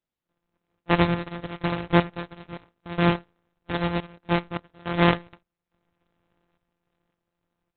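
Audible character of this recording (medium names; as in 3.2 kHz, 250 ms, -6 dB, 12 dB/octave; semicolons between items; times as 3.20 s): a buzz of ramps at a fixed pitch in blocks of 256 samples; random-step tremolo, depth 95%; aliases and images of a low sample rate 5.9 kHz, jitter 0%; Opus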